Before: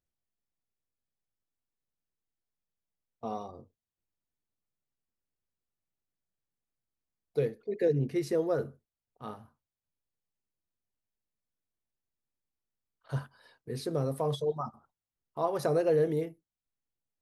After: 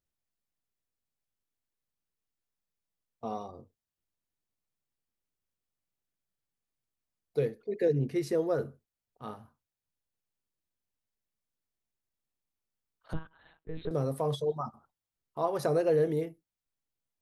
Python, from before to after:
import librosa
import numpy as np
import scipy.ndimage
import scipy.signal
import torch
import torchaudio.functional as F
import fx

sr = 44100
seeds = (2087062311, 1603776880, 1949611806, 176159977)

y = fx.lpc_monotone(x, sr, seeds[0], pitch_hz=160.0, order=10, at=(13.13, 13.91))